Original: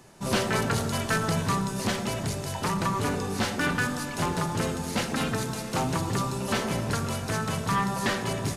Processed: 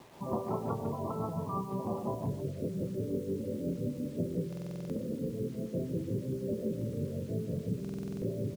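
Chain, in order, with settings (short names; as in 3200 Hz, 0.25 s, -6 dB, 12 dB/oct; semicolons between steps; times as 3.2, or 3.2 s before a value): steep low-pass 1200 Hz 72 dB/oct, from 2.26 s 590 Hz; spectral gate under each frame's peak -20 dB strong; HPF 49 Hz 12 dB/oct; low shelf 73 Hz -11 dB; notches 50/100/150/200/250/300/350/400/450 Hz; compressor 10:1, threshold -32 dBFS, peak gain reduction 9.5 dB; tremolo 5.7 Hz, depth 56%; bit-crush 10-bit; doubler 28 ms -12 dB; speakerphone echo 0.15 s, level -10 dB; stuck buffer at 4.48/7.8, samples 2048, times 8; gain +3.5 dB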